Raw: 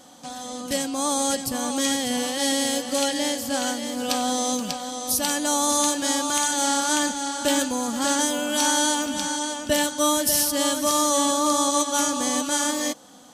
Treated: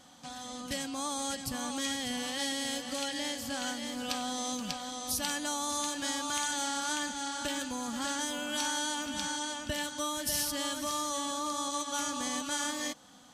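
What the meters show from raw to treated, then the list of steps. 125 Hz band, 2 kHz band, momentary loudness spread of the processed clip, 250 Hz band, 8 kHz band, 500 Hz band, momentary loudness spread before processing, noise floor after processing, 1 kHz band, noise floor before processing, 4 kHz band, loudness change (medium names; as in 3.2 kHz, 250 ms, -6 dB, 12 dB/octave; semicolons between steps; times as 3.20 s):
-5.0 dB, -7.5 dB, 5 LU, -12.0 dB, -11.5 dB, -14.0 dB, 7 LU, -44 dBFS, -10.5 dB, -36 dBFS, -8.5 dB, -11.0 dB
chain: treble shelf 4.6 kHz -11.5 dB; compression, threshold -24 dBFS, peak gain reduction 7 dB; peaking EQ 440 Hz -11.5 dB 2.5 oct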